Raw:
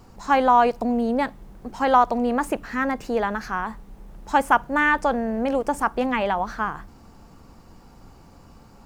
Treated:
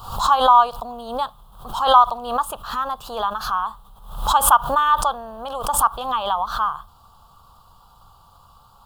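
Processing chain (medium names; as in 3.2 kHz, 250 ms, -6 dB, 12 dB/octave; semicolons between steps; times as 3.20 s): FFT filter 120 Hz 0 dB, 290 Hz -17 dB, 1.2 kHz +14 dB, 2.1 kHz -20 dB, 3.3 kHz +15 dB, 5.8 kHz -2 dB, 11 kHz +11 dB; swell ahead of each attack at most 90 dB/s; trim -5 dB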